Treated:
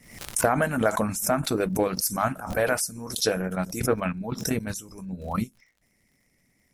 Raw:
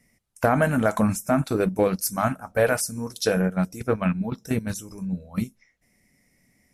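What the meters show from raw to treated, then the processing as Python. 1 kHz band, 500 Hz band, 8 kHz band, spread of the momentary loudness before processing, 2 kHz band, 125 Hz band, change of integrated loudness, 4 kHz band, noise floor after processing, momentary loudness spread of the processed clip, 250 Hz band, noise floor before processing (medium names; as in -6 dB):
-0.5 dB, -2.5 dB, +3.0 dB, 10 LU, -1.0 dB, -4.5 dB, -2.0 dB, +3.5 dB, -68 dBFS, 8 LU, -4.0 dB, -66 dBFS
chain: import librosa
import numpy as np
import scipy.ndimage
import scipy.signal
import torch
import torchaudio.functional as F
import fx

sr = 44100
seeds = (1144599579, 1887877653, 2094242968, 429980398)

y = fx.hpss(x, sr, part='harmonic', gain_db=-8)
y = fx.dmg_crackle(y, sr, seeds[0], per_s=80.0, level_db=-56.0)
y = fx.pre_swell(y, sr, db_per_s=86.0)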